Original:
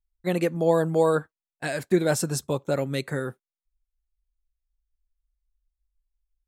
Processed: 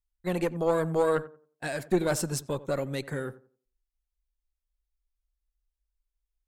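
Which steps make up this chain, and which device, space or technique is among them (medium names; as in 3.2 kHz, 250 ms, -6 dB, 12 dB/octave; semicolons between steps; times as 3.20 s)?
rockabilly slapback (valve stage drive 13 dB, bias 0.65; tape echo 89 ms, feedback 31%, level -15.5 dB, low-pass 1.2 kHz)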